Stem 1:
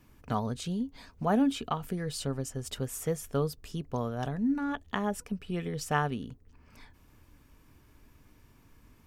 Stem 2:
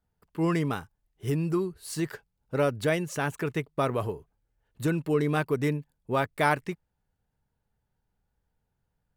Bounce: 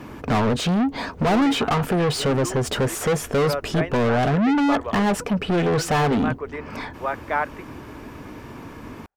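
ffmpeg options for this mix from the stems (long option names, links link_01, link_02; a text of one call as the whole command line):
ffmpeg -i stem1.wav -i stem2.wav -filter_complex "[0:a]tiltshelf=frequency=970:gain=7,asplit=2[link_01][link_02];[link_02]highpass=frequency=720:poles=1,volume=37dB,asoftclip=type=tanh:threshold=-10.5dB[link_03];[link_01][link_03]amix=inputs=2:normalize=0,lowpass=frequency=3000:poles=1,volume=-6dB,volume=-2dB[link_04];[1:a]lowpass=7600,acrossover=split=460 2400:gain=0.0794 1 0.0794[link_05][link_06][link_07];[link_05][link_06][link_07]amix=inputs=3:normalize=0,adelay=900,volume=2.5dB[link_08];[link_04][link_08]amix=inputs=2:normalize=0" out.wav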